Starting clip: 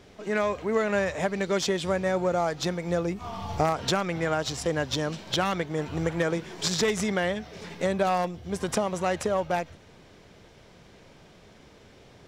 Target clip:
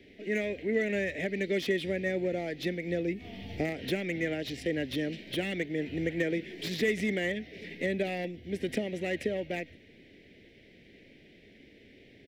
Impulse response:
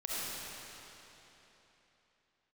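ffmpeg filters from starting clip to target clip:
-filter_complex "[0:a]firequalizer=gain_entry='entry(160,0);entry(260,10);entry(660,-3);entry(1100,-28);entry(1900,11);entry(6700,-10);entry(13000,0)':delay=0.05:min_phase=1,acrossover=split=320|1200|1800[a][b][c][d];[d]volume=28.5dB,asoftclip=hard,volume=-28.5dB[e];[a][b][c][e]amix=inputs=4:normalize=0,volume=-7.5dB"

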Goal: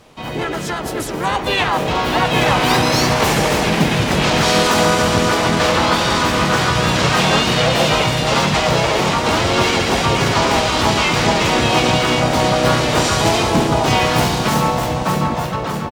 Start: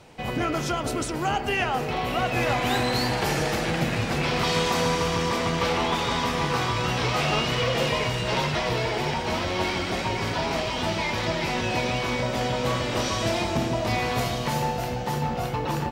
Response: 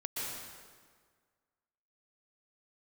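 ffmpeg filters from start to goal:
-filter_complex "[0:a]asplit=4[a][b][c][d];[b]asetrate=29433,aresample=44100,atempo=1.49831,volume=-15dB[e];[c]asetrate=55563,aresample=44100,atempo=0.793701,volume=-1dB[f];[d]asetrate=66075,aresample=44100,atempo=0.66742,volume=-6dB[g];[a][e][f][g]amix=inputs=4:normalize=0,dynaudnorm=f=940:g=3:m=11.5dB"

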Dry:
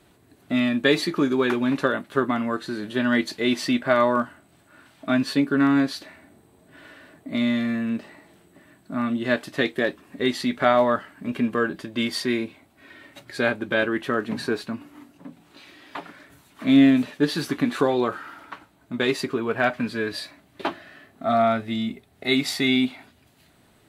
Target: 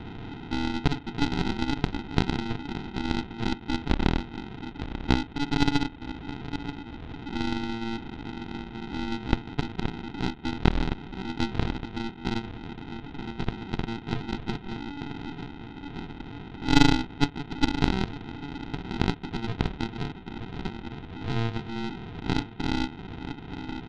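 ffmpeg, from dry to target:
-filter_complex "[0:a]aeval=exprs='val(0)+0.5*0.0891*sgn(val(0))':c=same,lowpass=1.5k,aecho=1:1:922|1844|2766:0.355|0.0887|0.0222,asplit=2[a][b];[b]acompressor=threshold=-31dB:ratio=6,volume=-1dB[c];[a][c]amix=inputs=2:normalize=0,bandreject=f=167.9:t=h:w=4,bandreject=f=335.8:t=h:w=4,bandreject=f=503.7:t=h:w=4,bandreject=f=671.6:t=h:w=4,bandreject=f=839.5:t=h:w=4,bandreject=f=1.0074k:t=h:w=4,bandreject=f=1.1753k:t=h:w=4,bandreject=f=1.3432k:t=h:w=4,bandreject=f=1.5111k:t=h:w=4,bandreject=f=1.679k:t=h:w=4,bandreject=f=1.8469k:t=h:w=4,bandreject=f=2.0148k:t=h:w=4,bandreject=f=2.1827k:t=h:w=4,bandreject=f=2.3506k:t=h:w=4,bandreject=f=2.5185k:t=h:w=4,bandreject=f=2.6864k:t=h:w=4,bandreject=f=2.8543k:t=h:w=4,bandreject=f=3.0222k:t=h:w=4,bandreject=f=3.1901k:t=h:w=4,bandreject=f=3.358k:t=h:w=4,bandreject=f=3.5259k:t=h:w=4,bandreject=f=3.6938k:t=h:w=4,bandreject=f=3.8617k:t=h:w=4,bandreject=f=4.0296k:t=h:w=4,bandreject=f=4.1975k:t=h:w=4,bandreject=f=4.3654k:t=h:w=4,bandreject=f=4.5333k:t=h:w=4,aresample=8000,acrusher=samples=14:mix=1:aa=0.000001,aresample=44100,aeval=exprs='0.668*(cos(1*acos(clip(val(0)/0.668,-1,1)))-cos(1*PI/2))+0.335*(cos(2*acos(clip(val(0)/0.668,-1,1)))-cos(2*PI/2))+0.15*(cos(3*acos(clip(val(0)/0.668,-1,1)))-cos(3*PI/2))+0.0168*(cos(6*acos(clip(val(0)/0.668,-1,1)))-cos(6*PI/2))+0.015*(cos(8*acos(clip(val(0)/0.668,-1,1)))-cos(8*PI/2))':c=same,volume=-5dB"

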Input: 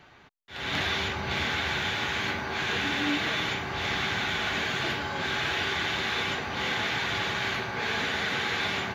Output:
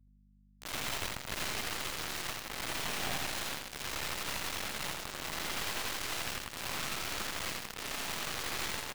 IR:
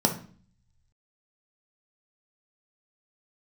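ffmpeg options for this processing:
-filter_complex "[0:a]acrossover=split=120|6100[a][b][c];[b]aeval=exprs='val(0)*sin(2*PI*460*n/s)':c=same[d];[a][d][c]amix=inputs=3:normalize=0,afftfilt=real='hypot(re,im)*cos(2*PI*random(0))':imag='hypot(re,im)*sin(2*PI*random(1))':win_size=512:overlap=0.75,acrusher=bits=3:dc=4:mix=0:aa=0.000001,aeval=exprs='val(0)+0.000631*(sin(2*PI*50*n/s)+sin(2*PI*2*50*n/s)/2+sin(2*PI*3*50*n/s)/3+sin(2*PI*4*50*n/s)/4+sin(2*PI*5*50*n/s)/5)':c=same,aecho=1:1:85|170|255|340:0.531|0.196|0.0727|0.0269,volume=2dB"

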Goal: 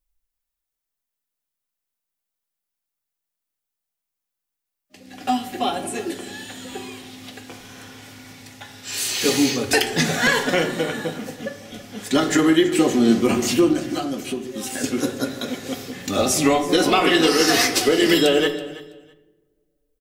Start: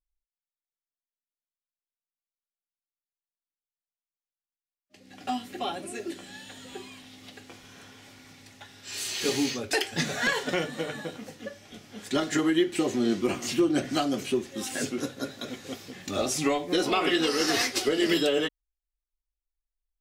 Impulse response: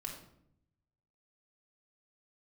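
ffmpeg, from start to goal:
-filter_complex "[0:a]asettb=1/sr,asplit=3[a][b][c];[a]atrim=end=13.734[d];[b]atrim=start=13.73:end=14.84,asetpts=PTS-STARTPTS,afade=t=in:d=0.004:c=qsin,afade=t=out:st=1.106:d=0.004:c=qsin,acompressor=threshold=-39dB:ratio=2[e];[c]atrim=start=14.836[f];[d][e]acrossfade=d=0.004:c1=hsin:c2=qsin[g];[g][f]acrossfade=d=0.004:c1=qsin:c2=hsin,highshelf=f=9.3k:g=9.5,aecho=1:1:328|656:0.133|0.0227,asplit=2[h][i];[1:a]atrim=start_sample=2205,asetrate=29547,aresample=44100,highshelf=f=4.5k:g=-11[j];[i][j]afir=irnorm=-1:irlink=0,volume=-3.5dB[k];[h][k]amix=inputs=2:normalize=0,volume=4.5dB"

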